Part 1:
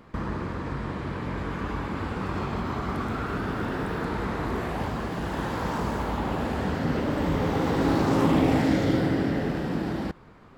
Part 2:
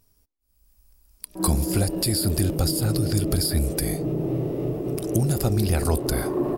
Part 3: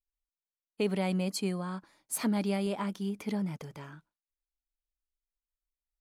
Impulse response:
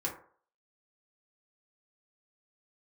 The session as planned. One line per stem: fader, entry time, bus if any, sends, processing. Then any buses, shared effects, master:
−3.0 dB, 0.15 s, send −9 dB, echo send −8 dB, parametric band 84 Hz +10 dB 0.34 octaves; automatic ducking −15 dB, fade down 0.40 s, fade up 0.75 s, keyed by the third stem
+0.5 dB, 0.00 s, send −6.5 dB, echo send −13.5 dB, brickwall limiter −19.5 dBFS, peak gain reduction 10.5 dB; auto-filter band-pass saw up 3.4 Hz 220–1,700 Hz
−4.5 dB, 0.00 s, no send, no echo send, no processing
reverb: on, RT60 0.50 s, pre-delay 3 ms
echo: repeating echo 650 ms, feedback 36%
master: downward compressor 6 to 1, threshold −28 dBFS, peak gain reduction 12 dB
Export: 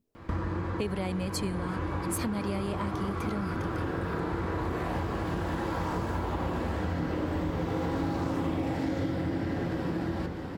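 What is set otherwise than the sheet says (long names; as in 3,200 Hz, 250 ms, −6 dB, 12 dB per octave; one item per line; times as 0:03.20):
stem 2: send off
stem 3 −4.5 dB → +5.0 dB
reverb return +8.0 dB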